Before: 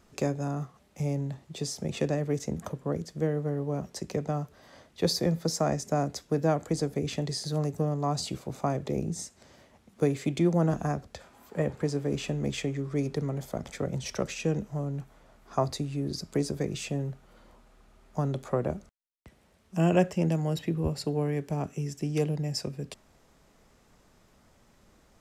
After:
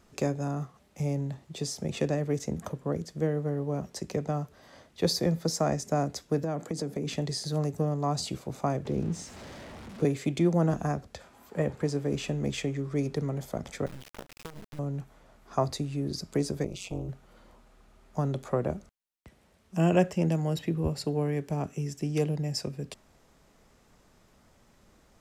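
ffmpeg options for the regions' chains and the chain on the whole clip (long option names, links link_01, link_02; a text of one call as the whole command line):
ffmpeg -i in.wav -filter_complex "[0:a]asettb=1/sr,asplit=3[link_01][link_02][link_03];[link_01]atrim=end=6.434[link_04];[link_02]atrim=start=6.43:end=7.14,asetpts=PTS-STARTPTS,afade=type=in:duration=0.004:curve=qsin,afade=type=out:start_time=0.706:duration=0.004:curve=qsin,highpass=frequency=160:width=0.5412,highpass=frequency=160:width=1.3066,lowshelf=frequency=220:gain=9,acompressor=threshold=-27dB:ratio=10:attack=3.2:release=140:knee=1:detection=peak[link_05];[link_03]atrim=start=7.136[link_06];[link_04][link_05]acrossfade=duration=0.004:curve1=hsin:curve2=qsin[link_07];[link_07][link_06]acrossfade=duration=0.004:curve1=qsin:curve2=hsin,asettb=1/sr,asplit=3[link_08][link_09][link_10];[link_08]atrim=end=8.854[link_11];[link_09]atrim=start=8.85:end=10.05,asetpts=PTS-STARTPTS,afade=type=in:duration=0.004:curve=qsin,afade=type=out:start_time=1.196:duration=0.004:curve=qsin,aeval=exprs='val(0)+0.5*0.0112*sgn(val(0))':channel_layout=same,aemphasis=mode=reproduction:type=50fm,acrossover=split=490|3000[link_12][link_13][link_14];[link_13]acompressor=threshold=-45dB:ratio=6:attack=3.2:release=140:knee=2.83:detection=peak[link_15];[link_12][link_15][link_14]amix=inputs=3:normalize=0[link_16];[link_10]atrim=start=10.046[link_17];[link_11][link_16]acrossfade=duration=0.004:curve1=hsin:curve2=qsin[link_18];[link_18][link_17]acrossfade=duration=0.004:curve1=qsin:curve2=hsin,asettb=1/sr,asplit=3[link_19][link_20][link_21];[link_19]atrim=end=13.864[link_22];[link_20]atrim=start=13.86:end=14.79,asetpts=PTS-STARTPTS,afade=type=in:duration=0.004:curve=qsin,afade=type=out:start_time=0.926:duration=0.004:curve=qsin,lowpass=1700,acrusher=bits=4:dc=4:mix=0:aa=0.000001,acompressor=threshold=-37dB:ratio=8:attack=3.2:release=140:knee=1:detection=peak[link_23];[link_21]atrim=start=14.786[link_24];[link_22][link_23]acrossfade=duration=0.004:curve1=hsin:curve2=qsin[link_25];[link_25][link_24]acrossfade=duration=0.004:curve1=qsin:curve2=hsin,asettb=1/sr,asplit=3[link_26][link_27][link_28];[link_26]atrim=end=16.644[link_29];[link_27]atrim=start=16.64:end=17.09,asetpts=PTS-STARTPTS,afade=type=in:duration=0.004:curve=qsin,afade=type=out:start_time=0.446:duration=0.004:curve=qsin,asuperstop=centerf=1700:order=12:qfactor=2.4,tremolo=f=190:d=0.919[link_30];[link_28]atrim=start=17.086[link_31];[link_29][link_30]acrossfade=duration=0.004:curve1=hsin:curve2=qsin[link_32];[link_32][link_31]acrossfade=duration=0.004:curve1=qsin:curve2=hsin" out.wav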